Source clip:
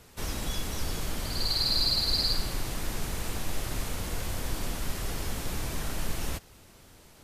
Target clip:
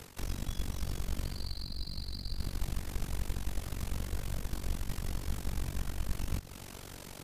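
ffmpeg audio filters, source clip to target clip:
ffmpeg -i in.wav -filter_complex "[0:a]areverse,acompressor=threshold=-43dB:ratio=5,areverse,tremolo=f=47:d=0.919,aeval=exprs='0.0224*(cos(1*acos(clip(val(0)/0.0224,-1,1)))-cos(1*PI/2))+0.00112*(cos(7*acos(clip(val(0)/0.0224,-1,1)))-cos(7*PI/2))':channel_layout=same,acrossover=split=250[link_01][link_02];[link_02]acompressor=threshold=-59dB:ratio=6[link_03];[link_01][link_03]amix=inputs=2:normalize=0,volume=15.5dB" out.wav

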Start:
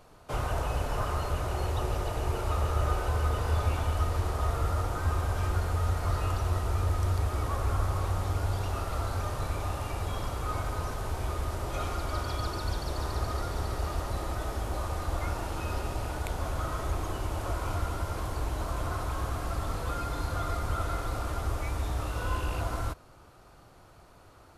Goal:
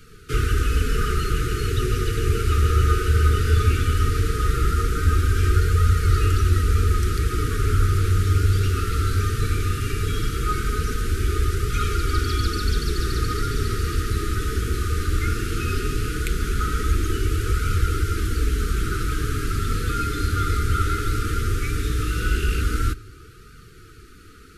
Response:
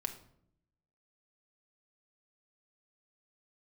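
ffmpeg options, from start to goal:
-filter_complex "[0:a]asuperstop=centerf=760:order=20:qfactor=1,acontrast=40,asplit=2[link_01][link_02];[1:a]atrim=start_sample=2205[link_03];[link_02][link_03]afir=irnorm=-1:irlink=0,volume=-12.5dB[link_04];[link_01][link_04]amix=inputs=2:normalize=0,flanger=delay=1.3:depth=10:regen=-45:speed=0.17:shape=triangular,volume=7dB"

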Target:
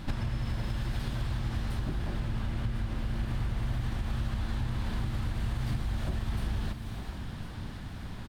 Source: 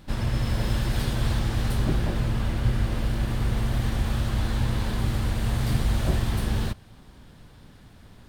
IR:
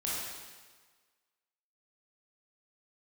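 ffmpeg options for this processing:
-filter_complex "[0:a]equalizer=frequency=470:width_type=o:width=0.78:gain=-5.5,acontrast=63,highshelf=frequency=5800:gain=-8.5,asplit=2[link_01][link_02];[1:a]atrim=start_sample=2205,highshelf=frequency=9500:gain=11.5,adelay=127[link_03];[link_02][link_03]afir=irnorm=-1:irlink=0,volume=-22dB[link_04];[link_01][link_04]amix=inputs=2:normalize=0,acompressor=threshold=-31dB:ratio=12,aecho=1:1:1054:0.266,volume=2.5dB"

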